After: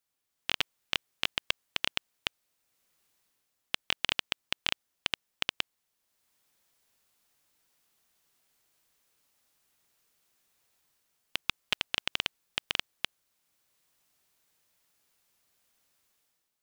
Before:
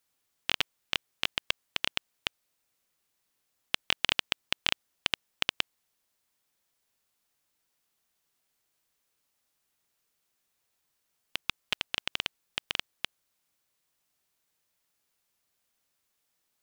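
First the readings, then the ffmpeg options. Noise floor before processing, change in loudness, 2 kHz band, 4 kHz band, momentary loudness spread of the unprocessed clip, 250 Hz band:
-79 dBFS, -1.0 dB, -1.0 dB, -1.0 dB, 9 LU, -1.0 dB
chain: -af "dynaudnorm=f=130:g=7:m=11dB,volume=-6dB"

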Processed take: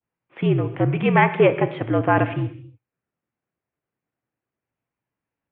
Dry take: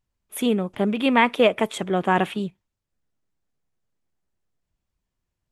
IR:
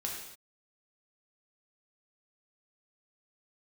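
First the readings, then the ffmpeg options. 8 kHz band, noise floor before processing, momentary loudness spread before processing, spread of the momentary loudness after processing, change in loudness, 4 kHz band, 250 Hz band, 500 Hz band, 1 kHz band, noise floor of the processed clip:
under -40 dB, -83 dBFS, 11 LU, 8 LU, +1.5 dB, -8.0 dB, +0.5 dB, +2.0 dB, +1.0 dB, under -85 dBFS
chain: -filter_complex "[0:a]adynamicequalizer=threshold=0.0282:dfrequency=1900:dqfactor=0.81:tfrequency=1900:tqfactor=0.81:attack=5:release=100:ratio=0.375:range=2:mode=cutabove:tftype=bell,asplit=2[a][b];[1:a]atrim=start_sample=2205,lowshelf=f=150:g=10[c];[b][c]afir=irnorm=-1:irlink=0,volume=-8dB[d];[a][d]amix=inputs=2:normalize=0,highpass=f=200:t=q:w=0.5412,highpass=f=200:t=q:w=1.307,lowpass=f=2.7k:t=q:w=0.5176,lowpass=f=2.7k:t=q:w=0.7071,lowpass=f=2.7k:t=q:w=1.932,afreqshift=-70"

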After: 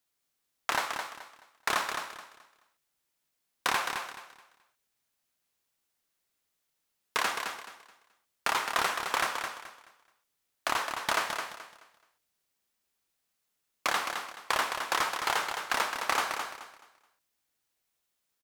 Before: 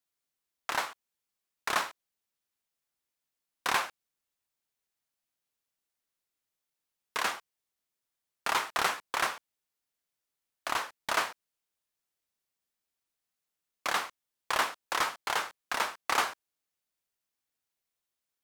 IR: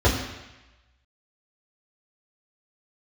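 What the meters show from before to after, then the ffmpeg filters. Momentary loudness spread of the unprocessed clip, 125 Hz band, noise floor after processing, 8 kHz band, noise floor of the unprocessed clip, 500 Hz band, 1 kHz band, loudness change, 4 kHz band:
10 LU, +2.0 dB, -81 dBFS, +1.5 dB, under -85 dBFS, +2.0 dB, +1.5 dB, +1.0 dB, +2.0 dB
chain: -filter_complex "[0:a]acompressor=threshold=-30dB:ratio=6,asplit=2[a][b];[b]aecho=0:1:214|428|642|856:0.473|0.132|0.0371|0.0104[c];[a][c]amix=inputs=2:normalize=0,volume=5.5dB"

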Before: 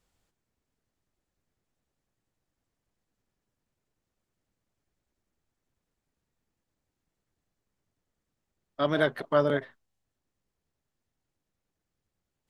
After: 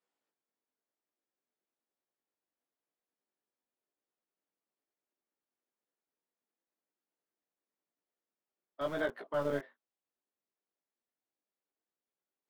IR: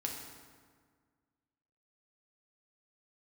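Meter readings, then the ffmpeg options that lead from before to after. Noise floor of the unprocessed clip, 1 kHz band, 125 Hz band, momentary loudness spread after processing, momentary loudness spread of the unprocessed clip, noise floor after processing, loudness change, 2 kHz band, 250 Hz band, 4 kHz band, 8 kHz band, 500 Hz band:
-85 dBFS, -9.5 dB, -12.0 dB, 5 LU, 6 LU, under -85 dBFS, -9.0 dB, -8.5 dB, -9.5 dB, -12.5 dB, n/a, -8.5 dB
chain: -filter_complex "[0:a]highshelf=f=3.7k:g=-10.5,flanger=delay=16.5:depth=4.5:speed=0.99,acrossover=split=250[a][b];[a]acrusher=bits=4:dc=4:mix=0:aa=0.000001[c];[c][b]amix=inputs=2:normalize=0,volume=-5dB"

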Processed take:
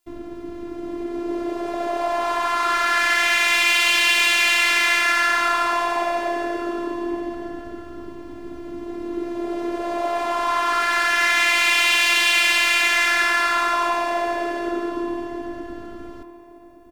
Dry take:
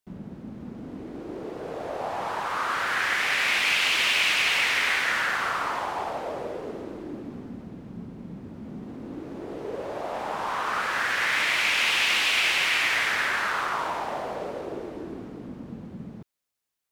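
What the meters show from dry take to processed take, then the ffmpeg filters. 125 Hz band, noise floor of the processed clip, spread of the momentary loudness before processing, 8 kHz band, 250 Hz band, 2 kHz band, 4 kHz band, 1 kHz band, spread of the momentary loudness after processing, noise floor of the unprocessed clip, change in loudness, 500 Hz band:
n/a, -38 dBFS, 20 LU, +7.5 dB, +9.0 dB, +6.0 dB, +5.0 dB, +7.5 dB, 20 LU, -44 dBFS, +5.5 dB, +8.0 dB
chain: -filter_complex "[0:a]apsyclip=15dB,acontrast=81,afftfilt=real='hypot(re,im)*cos(PI*b)':imag='0':win_size=512:overlap=0.75,asplit=2[a][b];[b]adelay=1165,lowpass=f=2.6k:p=1,volume=-15dB,asplit=2[c][d];[d]adelay=1165,lowpass=f=2.6k:p=1,volume=0.23[e];[c][e]amix=inputs=2:normalize=0[f];[a][f]amix=inputs=2:normalize=0,volume=-9dB"

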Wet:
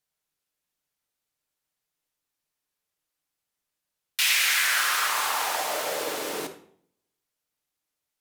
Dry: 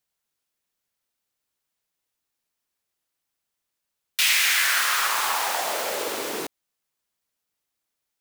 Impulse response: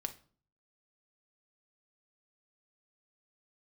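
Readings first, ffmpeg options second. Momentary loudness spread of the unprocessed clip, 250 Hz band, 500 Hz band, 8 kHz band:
13 LU, -1.5 dB, -1.0 dB, -2.0 dB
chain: -filter_complex "[1:a]atrim=start_sample=2205,asetrate=29988,aresample=44100[a];[0:a][a]afir=irnorm=-1:irlink=0,volume=-3dB"

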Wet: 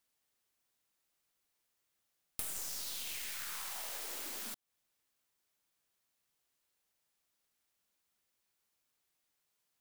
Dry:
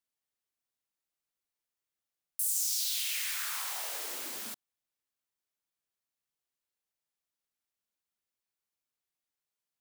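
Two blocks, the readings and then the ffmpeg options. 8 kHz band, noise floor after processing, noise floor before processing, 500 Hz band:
-9.0 dB, -83 dBFS, under -85 dBFS, -3.0 dB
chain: -af "aeval=exprs='0.133*(cos(1*acos(clip(val(0)/0.133,-1,1)))-cos(1*PI/2))+0.0422*(cos(4*acos(clip(val(0)/0.133,-1,1)))-cos(4*PI/2))':c=same,acompressor=threshold=-49dB:ratio=4,volume=8dB"

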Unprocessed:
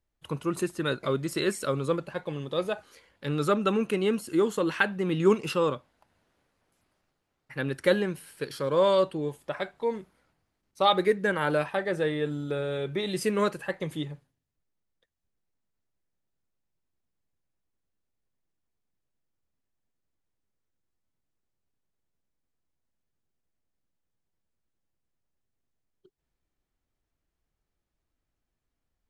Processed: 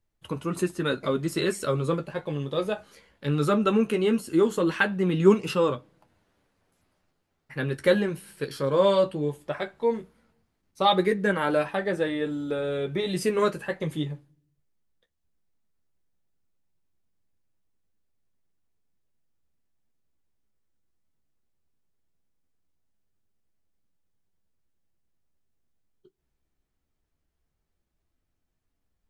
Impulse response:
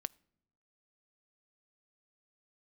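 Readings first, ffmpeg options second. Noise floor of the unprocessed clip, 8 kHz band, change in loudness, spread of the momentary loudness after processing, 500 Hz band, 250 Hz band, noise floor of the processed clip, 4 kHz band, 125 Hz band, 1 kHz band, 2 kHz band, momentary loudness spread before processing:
-83 dBFS, +0.5 dB, +2.0 dB, 12 LU, +2.0 dB, +3.5 dB, -78 dBFS, +1.0 dB, +3.5 dB, +1.5 dB, +1.0 dB, 11 LU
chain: -filter_complex "[0:a]flanger=delay=9.3:depth=5.6:regen=-36:speed=0.17:shape=triangular,asplit=2[a][b];[1:a]atrim=start_sample=2205,lowshelf=f=400:g=7[c];[b][c]afir=irnorm=-1:irlink=0,volume=-1dB[d];[a][d]amix=inputs=2:normalize=0"

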